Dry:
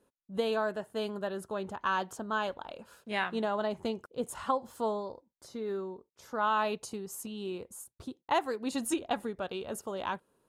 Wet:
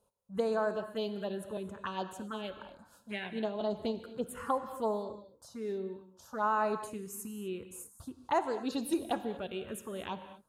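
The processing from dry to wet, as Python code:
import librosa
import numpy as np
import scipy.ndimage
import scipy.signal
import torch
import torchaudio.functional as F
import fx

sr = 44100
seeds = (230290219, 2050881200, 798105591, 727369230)

y = fx.rotary(x, sr, hz=6.3, at=(1.57, 3.61))
y = fx.env_phaser(y, sr, low_hz=310.0, high_hz=3300.0, full_db=-26.5)
y = fx.rev_gated(y, sr, seeds[0], gate_ms=270, shape='flat', drr_db=9.5)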